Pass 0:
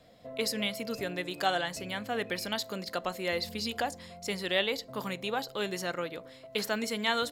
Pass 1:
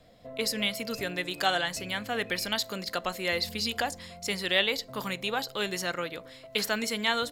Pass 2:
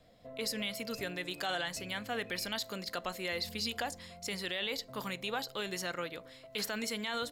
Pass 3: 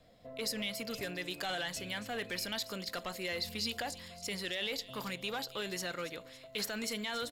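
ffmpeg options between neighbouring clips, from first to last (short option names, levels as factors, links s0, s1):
-filter_complex "[0:a]lowshelf=f=60:g=10.5,acrossover=split=1200[s0][s1];[s1]dynaudnorm=f=200:g=5:m=1.78[s2];[s0][s2]amix=inputs=2:normalize=0"
-af "alimiter=limit=0.112:level=0:latency=1:release=29,volume=0.562"
-filter_complex "[0:a]acrossover=split=2400[s0][s1];[s0]volume=53.1,asoftclip=hard,volume=0.0188[s2];[s1]aecho=1:1:279|558|837|1116:0.211|0.0909|0.0391|0.0168[s3];[s2][s3]amix=inputs=2:normalize=0"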